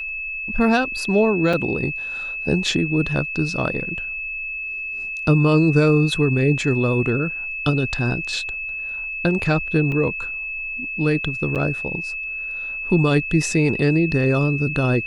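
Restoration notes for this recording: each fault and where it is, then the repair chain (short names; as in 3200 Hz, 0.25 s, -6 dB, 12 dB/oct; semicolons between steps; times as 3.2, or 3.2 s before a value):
tone 2600 Hz -26 dBFS
1.53 gap 4.7 ms
9.92 gap 2.2 ms
11.55–11.56 gap 7.6 ms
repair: notch 2600 Hz, Q 30; interpolate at 1.53, 4.7 ms; interpolate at 9.92, 2.2 ms; interpolate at 11.55, 7.6 ms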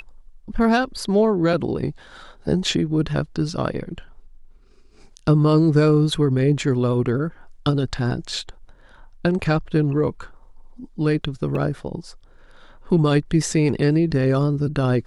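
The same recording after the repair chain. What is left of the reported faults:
none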